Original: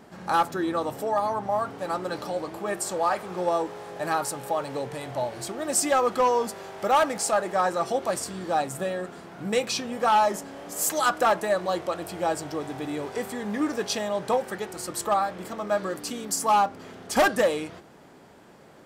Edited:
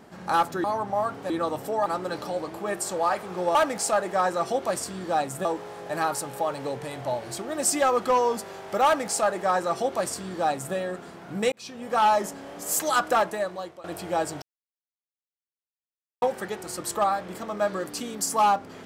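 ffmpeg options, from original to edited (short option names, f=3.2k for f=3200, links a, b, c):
-filter_complex "[0:a]asplit=10[a][b][c][d][e][f][g][h][i][j];[a]atrim=end=0.642[k];[b]atrim=start=1.198:end=1.862[l];[c]atrim=start=0.638:end=1.202[m];[d]atrim=start=1.858:end=3.552[n];[e]atrim=start=6.948:end=8.852[o];[f]atrim=start=3.548:end=9.62,asetpts=PTS-STARTPTS,afade=t=out:st=6.068:d=0.004:c=hsin[p];[g]atrim=start=9.62:end=11.94,asetpts=PTS-STARTPTS,afade=t=in:d=0.51,afade=t=out:st=1.6:d=0.72:silence=0.1[q];[h]atrim=start=11.94:end=12.52,asetpts=PTS-STARTPTS,afade=t=in:d=0.004:c=hsin:silence=0.1,afade=t=out:st=0.576:d=0.004:c=hsin[r];[i]atrim=start=12.52:end=14.32,asetpts=PTS-STARTPTS,volume=0[s];[j]atrim=start=14.32,asetpts=PTS-STARTPTS,afade=t=in:d=0.004:c=hsin[t];[k][l]acrossfade=d=0.004:c1=hsin:c2=hsin[u];[u][m]acrossfade=d=0.004:c1=hsin:c2=hsin[v];[v][n]acrossfade=d=0.004:c1=hsin:c2=hsin[w];[w][o]acrossfade=d=0.004:c1=hsin:c2=hsin[x];[p][q][r][s][t]concat=n=5:v=0:a=1[y];[x][y]acrossfade=d=0.004:c1=hsin:c2=hsin"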